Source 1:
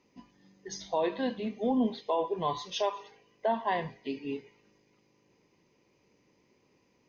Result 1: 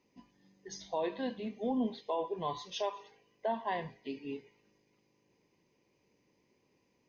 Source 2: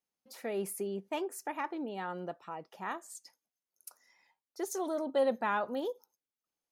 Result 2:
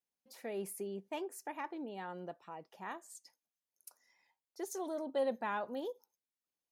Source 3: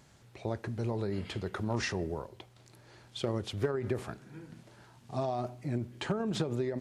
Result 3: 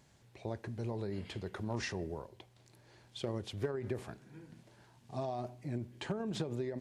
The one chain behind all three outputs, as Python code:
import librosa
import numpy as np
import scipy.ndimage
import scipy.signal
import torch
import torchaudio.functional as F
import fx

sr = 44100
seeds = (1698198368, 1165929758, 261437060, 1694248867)

y = fx.peak_eq(x, sr, hz=1300.0, db=-6.0, octaves=0.21)
y = F.gain(torch.from_numpy(y), -5.0).numpy()